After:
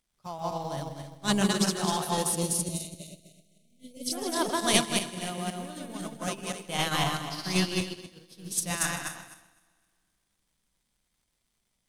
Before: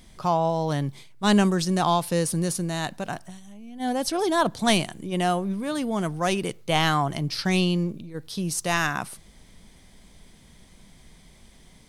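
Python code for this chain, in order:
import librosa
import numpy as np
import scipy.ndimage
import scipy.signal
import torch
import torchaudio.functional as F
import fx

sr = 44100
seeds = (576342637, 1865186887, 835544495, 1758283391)

p1 = fx.reverse_delay_fb(x, sr, ms=128, feedback_pct=65, wet_db=0.0)
p2 = fx.high_shelf(p1, sr, hz=4300.0, db=11.5)
p3 = fx.dmg_crackle(p2, sr, seeds[0], per_s=250.0, level_db=-30.0)
p4 = fx.brickwall_bandstop(p3, sr, low_hz=690.0, high_hz=2000.0, at=(2.29, 4.13))
p5 = p4 + fx.echo_feedback(p4, sr, ms=156, feedback_pct=55, wet_db=-10.0, dry=0)
p6 = fx.upward_expand(p5, sr, threshold_db=-32.0, expansion=2.5)
y = p6 * 10.0 ** (-5.5 / 20.0)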